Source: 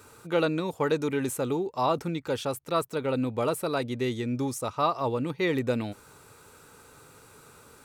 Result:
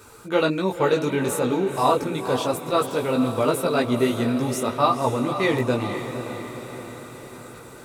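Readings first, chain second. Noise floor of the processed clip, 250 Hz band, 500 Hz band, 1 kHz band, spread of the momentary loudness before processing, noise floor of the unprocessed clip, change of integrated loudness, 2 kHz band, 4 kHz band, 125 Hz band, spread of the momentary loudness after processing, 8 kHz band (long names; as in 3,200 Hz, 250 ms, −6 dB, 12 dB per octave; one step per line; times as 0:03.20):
−42 dBFS, +6.0 dB, +6.0 dB, +7.0 dB, 4 LU, −54 dBFS, +6.0 dB, +6.5 dB, +6.5 dB, +5.0 dB, 15 LU, +6.0 dB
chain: multi-voice chorus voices 6, 1.1 Hz, delay 18 ms, depth 3 ms
feedback delay with all-pass diffusion 506 ms, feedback 57%, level −9 dB
level +8.5 dB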